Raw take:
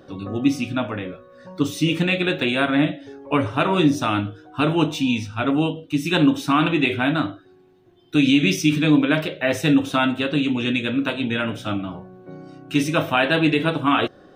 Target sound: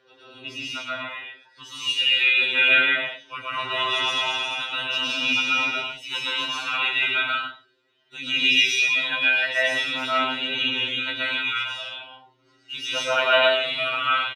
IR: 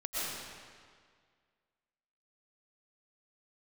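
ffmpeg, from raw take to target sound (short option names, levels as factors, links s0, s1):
-filter_complex "[0:a]bandpass=f=2900:t=q:w=0.98:csg=0,aecho=1:1:2.1:0.41,aphaser=in_gain=1:out_gain=1:delay=1.2:decay=0.45:speed=0.38:type=sinusoidal,asettb=1/sr,asplit=3[s0][s1][s2];[s0]atrim=end=3.374[s3];[s1]atrim=start=3.37:end=5.66,asetpts=PTS-STARTPTS,afade=t=in:d=0.004:c=qsin,afade=t=out:st=2.286:d=0.004:c=qsin,aecho=1:1:220|352|431.2|478.7|507.2:0.631|0.398|0.251|0.158|0.1,atrim=end_sample=100989[s4];[s2]atrim=start=5.656[s5];[s3][s4]acrossfade=d=0.004:c1=hsin:c2=qsin[s6];[s6][s5]acrossfade=d=0.004:c1=qsin:c2=hsin[s7];[1:a]atrim=start_sample=2205,afade=t=out:st=0.36:d=0.01,atrim=end_sample=16317[s8];[s7][s8]afir=irnorm=-1:irlink=0,afftfilt=real='re*2.45*eq(mod(b,6),0)':imag='im*2.45*eq(mod(b,6),0)':win_size=2048:overlap=0.75"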